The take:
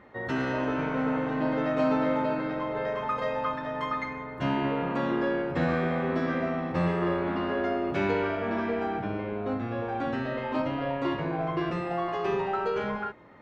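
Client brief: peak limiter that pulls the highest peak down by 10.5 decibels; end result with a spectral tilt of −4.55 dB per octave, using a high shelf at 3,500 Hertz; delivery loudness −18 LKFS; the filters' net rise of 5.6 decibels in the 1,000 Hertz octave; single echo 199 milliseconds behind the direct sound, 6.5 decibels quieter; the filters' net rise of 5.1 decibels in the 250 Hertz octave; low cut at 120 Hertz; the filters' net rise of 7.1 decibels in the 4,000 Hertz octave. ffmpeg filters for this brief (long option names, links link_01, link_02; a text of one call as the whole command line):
ffmpeg -i in.wav -af "highpass=120,equalizer=frequency=250:width_type=o:gain=6,equalizer=frequency=1000:width_type=o:gain=6,highshelf=frequency=3500:gain=4,equalizer=frequency=4000:width_type=o:gain=7,alimiter=limit=-20.5dB:level=0:latency=1,aecho=1:1:199:0.473,volume=9.5dB" out.wav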